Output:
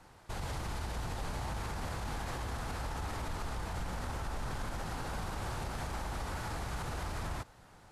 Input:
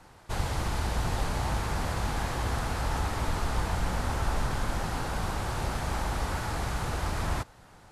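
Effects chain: limiter -25.5 dBFS, peak gain reduction 9.5 dB; gain -4 dB

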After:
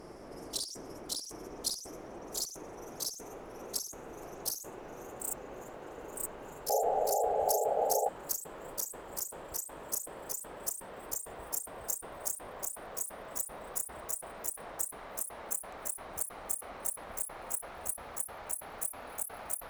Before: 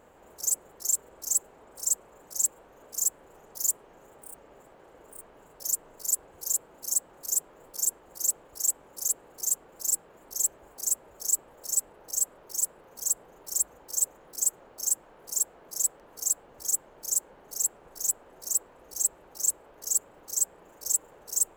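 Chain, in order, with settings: speed glide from 71% -> 148%; negative-ratio compressor -38 dBFS, ratio -1; painted sound noise, 6.69–8.09, 400–860 Hz -30 dBFS

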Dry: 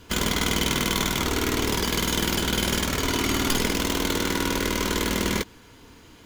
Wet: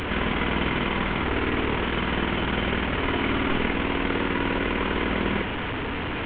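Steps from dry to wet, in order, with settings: delta modulation 16 kbps, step -22.5 dBFS

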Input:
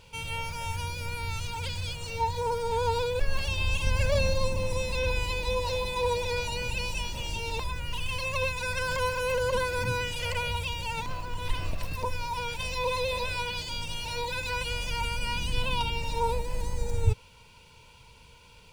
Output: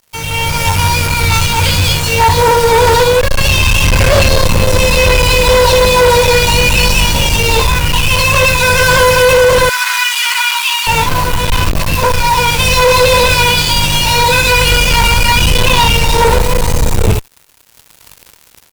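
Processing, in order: early reflections 20 ms -5 dB, 60 ms -9.5 dB; in parallel at -11 dB: requantised 6-bit, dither triangular; on the sum: fuzz box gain 29 dB, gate -38 dBFS; 9.69–10.87 steep high-pass 1000 Hz 36 dB/oct; AGC gain up to 11.5 dB

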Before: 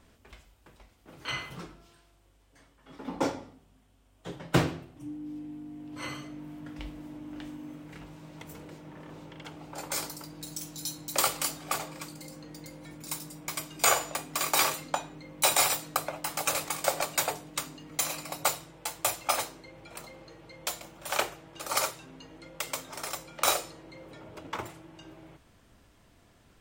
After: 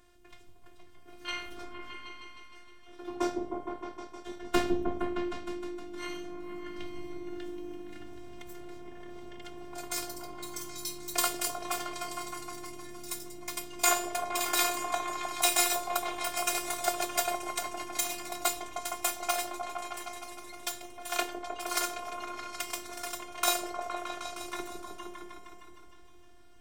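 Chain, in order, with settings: robotiser 353 Hz; repeats that get brighter 0.155 s, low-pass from 400 Hz, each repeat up 1 oct, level 0 dB

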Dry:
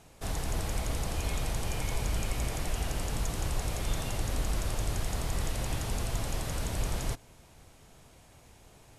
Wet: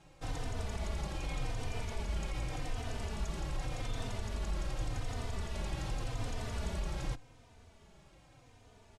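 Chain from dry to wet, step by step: limiter -24.5 dBFS, peak gain reduction 6.5 dB; air absorption 68 m; endless flanger 3.2 ms -0.86 Hz

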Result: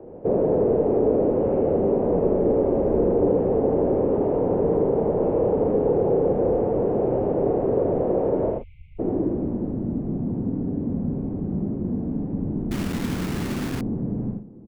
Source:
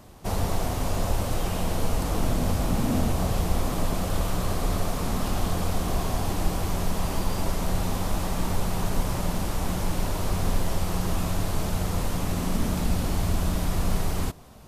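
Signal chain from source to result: doubler 34 ms -11.5 dB; 8.51–8.99 spectral delete 320–2300 Hz; on a send: tapped delay 81/116/122 ms -3.5/-17/-14 dB; on the sum: mistuned SSB -260 Hz 370–3200 Hz; in parallel at -0.5 dB: limiter -28.5 dBFS, peak gain reduction 8.5 dB; on the sum: low-pass sweep 490 Hz -> 230 Hz, 8.59–9.84; 12.71–13.81 requantised 6-bit, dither none; gain +4 dB

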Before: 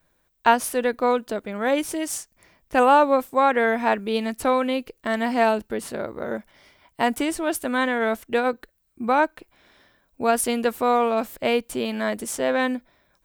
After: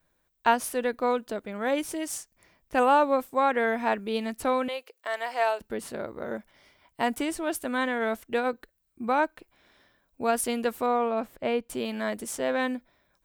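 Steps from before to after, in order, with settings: 4.68–5.61 HPF 500 Hz 24 dB/oct; 10.86–11.7 high shelf 3400 Hz -12 dB; gain -5 dB

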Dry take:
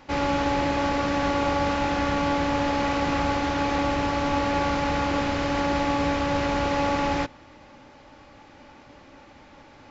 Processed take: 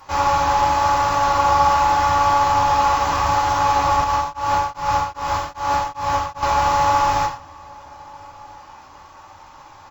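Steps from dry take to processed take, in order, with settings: tone controls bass -3 dB, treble +10 dB; flange 0.84 Hz, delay 7 ms, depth 9.8 ms, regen -37%; ten-band EQ 250 Hz -11 dB, 500 Hz -7 dB, 1000 Hz +11 dB, 2000 Hz -7 dB, 4000 Hz -5 dB; outdoor echo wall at 230 m, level -24 dB; non-linear reverb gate 0.15 s falling, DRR -1 dB; 4.04–6.43 tremolo triangle 2.5 Hz, depth 100%; decimation joined by straight lines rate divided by 2×; gain +6.5 dB

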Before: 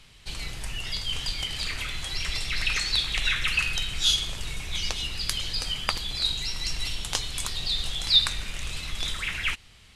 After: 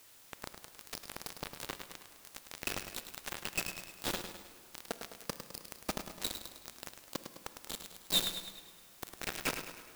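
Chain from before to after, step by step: median filter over 41 samples; elliptic high-pass 170 Hz, stop band 50 dB; dynamic EQ 3100 Hz, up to -5 dB, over -59 dBFS, Q 3.4; vocal rider within 5 dB 2 s; one-sided clip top -36 dBFS; bit-crush 6-bit; added noise white -65 dBFS; on a send at -12 dB: reverb RT60 2.7 s, pre-delay 22 ms; on the sum: lo-fi delay 0.104 s, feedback 55%, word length 10-bit, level -8.5 dB; gain +6 dB

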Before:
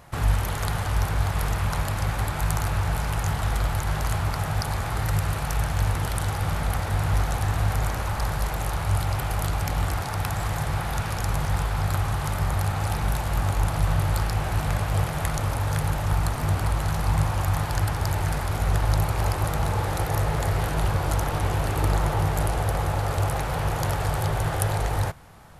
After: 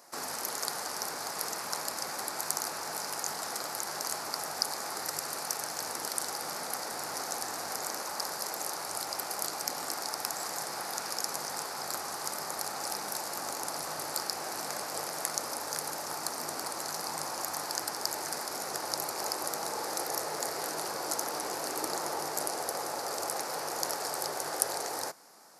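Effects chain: HPF 270 Hz 24 dB/oct; resonant high shelf 4000 Hz +7 dB, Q 3; gain -6 dB

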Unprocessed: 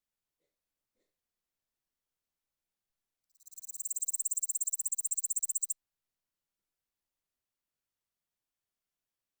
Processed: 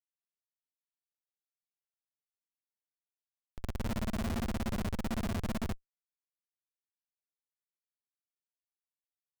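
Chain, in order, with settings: spectrum mirrored in octaves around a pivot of 1300 Hz; resonant low shelf 230 Hz -6.5 dB, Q 1.5; Schmitt trigger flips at -32 dBFS; gain +3.5 dB

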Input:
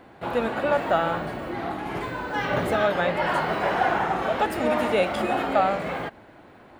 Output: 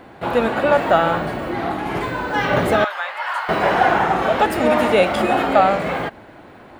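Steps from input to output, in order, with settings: 2.84–3.49 ladder high-pass 820 Hz, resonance 30%; gain +7 dB

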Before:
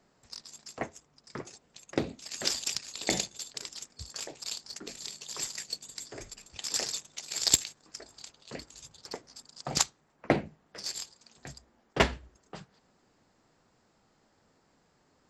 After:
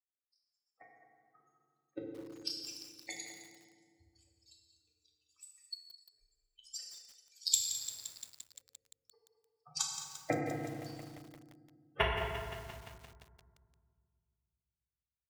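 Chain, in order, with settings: per-bin expansion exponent 3; bell 240 Hz -9.5 dB 0.99 oct; notch 6300 Hz, Q 16; echo 0.211 s -14 dB; FDN reverb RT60 2 s, low-frequency decay 1.5×, high-frequency decay 0.55×, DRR -1.5 dB; lo-fi delay 0.173 s, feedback 80%, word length 7-bit, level -11 dB; gain -4.5 dB

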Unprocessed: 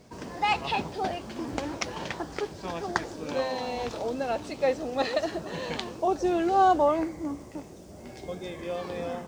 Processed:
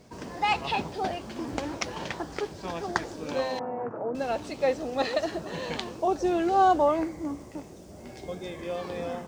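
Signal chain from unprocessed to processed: 3.59–4.15 elliptic band-pass 120–1500 Hz, stop band 40 dB

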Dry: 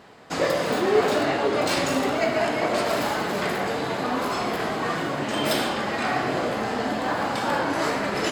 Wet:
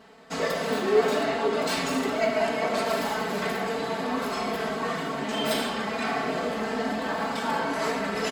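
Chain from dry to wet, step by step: comb 4.5 ms, depth 99%; gain -6 dB

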